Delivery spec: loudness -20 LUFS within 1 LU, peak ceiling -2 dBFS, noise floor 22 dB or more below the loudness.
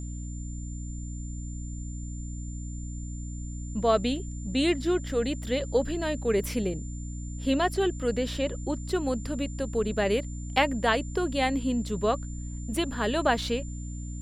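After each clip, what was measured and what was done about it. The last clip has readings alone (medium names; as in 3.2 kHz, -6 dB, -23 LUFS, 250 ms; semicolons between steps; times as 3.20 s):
hum 60 Hz; highest harmonic 300 Hz; hum level -33 dBFS; steady tone 7.2 kHz; tone level -47 dBFS; loudness -29.5 LUFS; peak level -9.5 dBFS; loudness target -20.0 LUFS
-> de-hum 60 Hz, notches 5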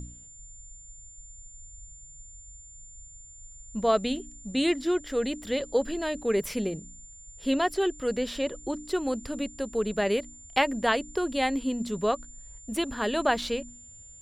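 hum not found; steady tone 7.2 kHz; tone level -47 dBFS
-> band-stop 7.2 kHz, Q 30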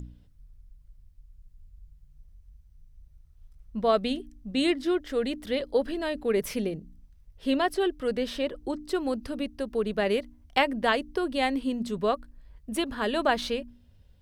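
steady tone not found; loudness -28.5 LUFS; peak level -9.5 dBFS; loudness target -20.0 LUFS
-> trim +8.5 dB; peak limiter -2 dBFS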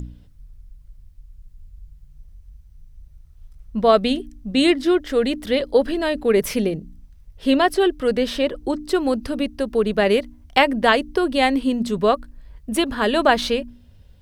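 loudness -20.0 LUFS; peak level -2.0 dBFS; noise floor -49 dBFS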